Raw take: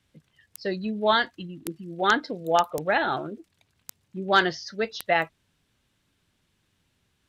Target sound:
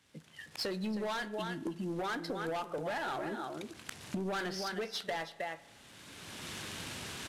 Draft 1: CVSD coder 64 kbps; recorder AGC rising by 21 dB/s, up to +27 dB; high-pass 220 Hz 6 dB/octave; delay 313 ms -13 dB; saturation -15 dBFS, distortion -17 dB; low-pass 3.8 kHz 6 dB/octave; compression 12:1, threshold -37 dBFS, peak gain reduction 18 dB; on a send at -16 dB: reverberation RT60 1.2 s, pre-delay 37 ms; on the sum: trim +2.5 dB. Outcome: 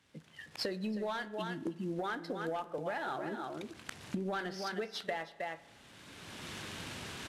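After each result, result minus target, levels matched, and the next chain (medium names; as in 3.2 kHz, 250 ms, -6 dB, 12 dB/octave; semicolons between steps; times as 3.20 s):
saturation: distortion -9 dB; 8 kHz band -3.5 dB
CVSD coder 64 kbps; recorder AGC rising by 21 dB/s, up to +27 dB; high-pass 220 Hz 6 dB/octave; delay 313 ms -13 dB; saturation -24 dBFS, distortion -8 dB; low-pass 3.8 kHz 6 dB/octave; compression 12:1, threshold -37 dBFS, peak gain reduction 11.5 dB; on a send at -16 dB: reverberation RT60 1.2 s, pre-delay 37 ms; on the sum: trim +2.5 dB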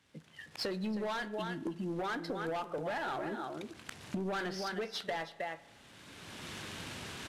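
8 kHz band -3.5 dB
CVSD coder 64 kbps; recorder AGC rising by 21 dB/s, up to +27 dB; high-pass 220 Hz 6 dB/octave; delay 313 ms -13 dB; saturation -24 dBFS, distortion -8 dB; low-pass 8.8 kHz 6 dB/octave; compression 12:1, threshold -37 dBFS, peak gain reduction 11.5 dB; on a send at -16 dB: reverberation RT60 1.2 s, pre-delay 37 ms; on the sum: trim +2.5 dB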